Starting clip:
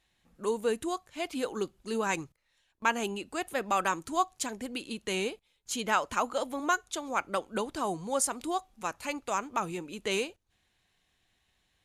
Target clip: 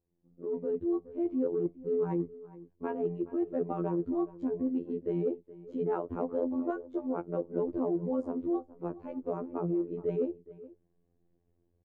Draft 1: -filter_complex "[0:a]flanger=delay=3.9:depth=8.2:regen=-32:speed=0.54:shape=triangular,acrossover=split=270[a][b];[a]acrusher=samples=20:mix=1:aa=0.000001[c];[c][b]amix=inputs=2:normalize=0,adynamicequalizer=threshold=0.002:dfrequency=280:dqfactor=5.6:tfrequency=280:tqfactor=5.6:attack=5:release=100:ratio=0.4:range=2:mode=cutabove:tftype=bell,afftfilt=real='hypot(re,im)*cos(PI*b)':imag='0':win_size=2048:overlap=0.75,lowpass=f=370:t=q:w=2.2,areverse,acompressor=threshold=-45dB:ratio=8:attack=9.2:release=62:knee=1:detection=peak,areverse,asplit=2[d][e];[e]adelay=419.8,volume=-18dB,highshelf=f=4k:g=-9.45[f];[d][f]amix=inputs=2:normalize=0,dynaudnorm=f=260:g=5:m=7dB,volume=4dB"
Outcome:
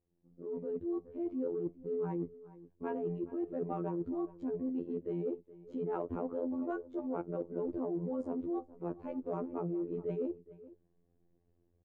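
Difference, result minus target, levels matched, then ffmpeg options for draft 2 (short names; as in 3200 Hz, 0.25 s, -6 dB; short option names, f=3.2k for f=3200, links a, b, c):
compressor: peak gain reduction +6 dB
-filter_complex "[0:a]flanger=delay=3.9:depth=8.2:regen=-32:speed=0.54:shape=triangular,acrossover=split=270[a][b];[a]acrusher=samples=20:mix=1:aa=0.000001[c];[c][b]amix=inputs=2:normalize=0,adynamicequalizer=threshold=0.002:dfrequency=280:dqfactor=5.6:tfrequency=280:tqfactor=5.6:attack=5:release=100:ratio=0.4:range=2:mode=cutabove:tftype=bell,afftfilt=real='hypot(re,im)*cos(PI*b)':imag='0':win_size=2048:overlap=0.75,lowpass=f=370:t=q:w=2.2,areverse,acompressor=threshold=-38dB:ratio=8:attack=9.2:release=62:knee=1:detection=peak,areverse,asplit=2[d][e];[e]adelay=419.8,volume=-18dB,highshelf=f=4k:g=-9.45[f];[d][f]amix=inputs=2:normalize=0,dynaudnorm=f=260:g=5:m=7dB,volume=4dB"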